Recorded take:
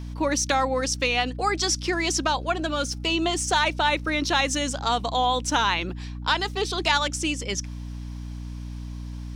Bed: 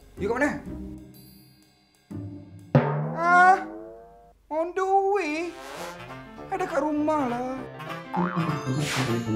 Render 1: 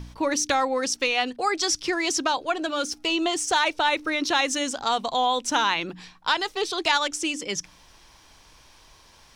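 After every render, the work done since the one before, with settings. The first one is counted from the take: de-hum 60 Hz, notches 5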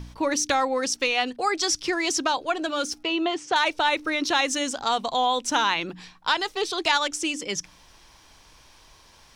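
3.03–3.56 BPF 120–3200 Hz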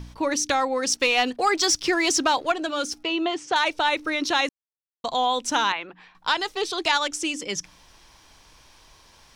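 0.87–2.52 sample leveller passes 1; 4.49–5.04 mute; 5.72–6.15 three-band isolator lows -14 dB, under 480 Hz, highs -23 dB, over 2800 Hz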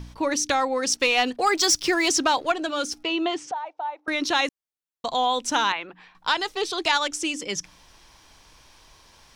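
1.46–2.08 high shelf 12000 Hz +11 dB; 3.51–4.08 band-pass 790 Hz, Q 6.6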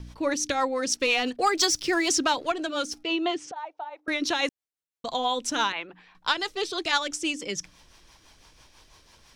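rotary speaker horn 6 Hz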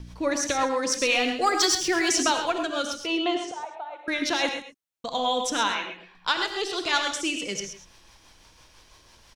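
echo 0.132 s -11.5 dB; non-linear reverb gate 0.13 s rising, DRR 5.5 dB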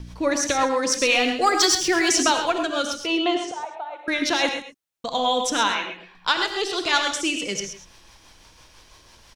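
gain +3.5 dB

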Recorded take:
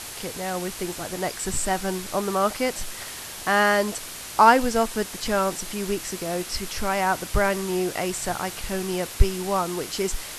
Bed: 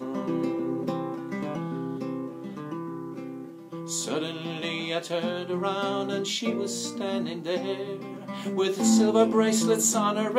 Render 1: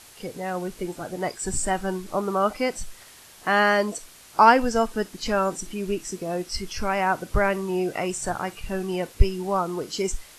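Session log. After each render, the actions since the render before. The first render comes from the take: noise print and reduce 12 dB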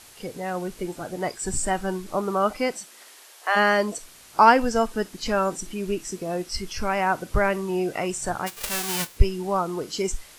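2.72–3.55 HPF 170 Hz -> 540 Hz 24 dB/oct; 8.46–9.16 spectral whitening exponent 0.1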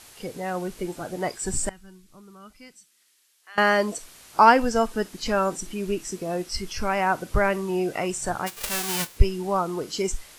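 1.69–3.58 passive tone stack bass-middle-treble 6-0-2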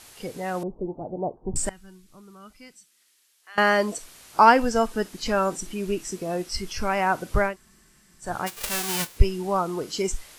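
0.63–1.56 steep low-pass 930 Hz 48 dB/oct; 7.49–8.27 room tone, crossfade 0.16 s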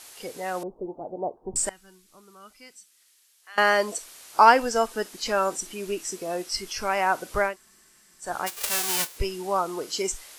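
tone controls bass -13 dB, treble +3 dB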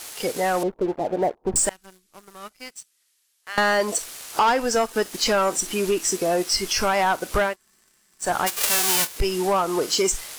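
compressor 2.5:1, threshold -29 dBFS, peak gain reduction 13 dB; sample leveller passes 3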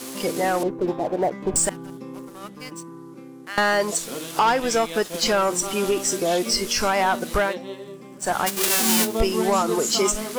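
add bed -4.5 dB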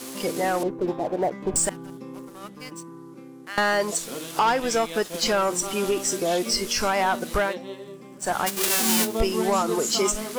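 gain -2 dB

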